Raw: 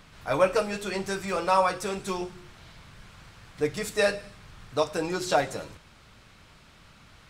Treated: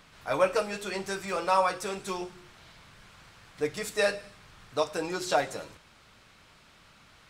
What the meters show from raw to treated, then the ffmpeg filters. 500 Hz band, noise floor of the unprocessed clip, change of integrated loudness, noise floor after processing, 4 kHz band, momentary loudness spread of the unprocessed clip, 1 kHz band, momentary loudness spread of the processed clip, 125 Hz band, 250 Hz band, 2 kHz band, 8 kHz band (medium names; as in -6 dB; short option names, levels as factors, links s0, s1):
-2.5 dB, -55 dBFS, -2.0 dB, -58 dBFS, -1.5 dB, 11 LU, -2.0 dB, 11 LU, -6.5 dB, -4.5 dB, -1.5 dB, -1.5 dB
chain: -af "lowshelf=f=210:g=-7.5,volume=0.841"